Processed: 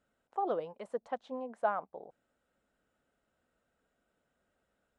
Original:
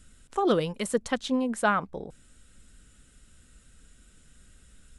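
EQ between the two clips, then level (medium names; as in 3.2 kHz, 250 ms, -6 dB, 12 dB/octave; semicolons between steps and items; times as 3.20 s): band-pass filter 710 Hz, Q 2.4; -2.5 dB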